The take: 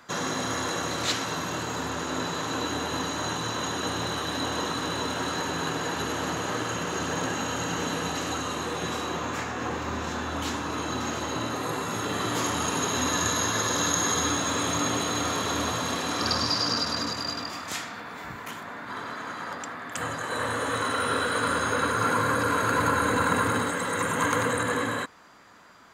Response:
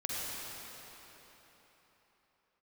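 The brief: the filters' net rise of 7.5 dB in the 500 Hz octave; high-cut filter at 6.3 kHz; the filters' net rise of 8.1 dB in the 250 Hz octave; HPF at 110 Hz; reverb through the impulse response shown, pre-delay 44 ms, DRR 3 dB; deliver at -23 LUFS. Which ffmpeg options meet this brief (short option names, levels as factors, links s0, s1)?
-filter_complex "[0:a]highpass=110,lowpass=6300,equalizer=f=250:t=o:g=8,equalizer=f=500:t=o:g=6.5,asplit=2[s0][s1];[1:a]atrim=start_sample=2205,adelay=44[s2];[s1][s2]afir=irnorm=-1:irlink=0,volume=0.398[s3];[s0][s3]amix=inputs=2:normalize=0,volume=0.944"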